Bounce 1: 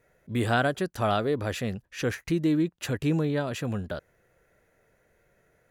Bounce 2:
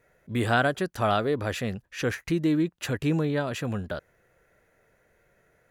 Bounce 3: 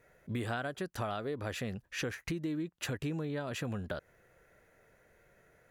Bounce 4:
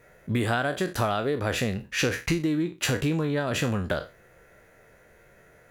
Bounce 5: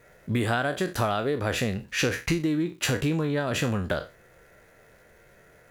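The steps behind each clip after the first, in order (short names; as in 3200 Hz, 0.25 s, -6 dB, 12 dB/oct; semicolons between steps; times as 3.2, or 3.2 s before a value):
bell 1500 Hz +2.5 dB 2.2 oct
compressor 6:1, threshold -34 dBFS, peak gain reduction 15 dB
spectral trails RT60 0.31 s; in parallel at -11 dB: crossover distortion -51.5 dBFS; on the sum: gain +8 dB
crackle 470/s -54 dBFS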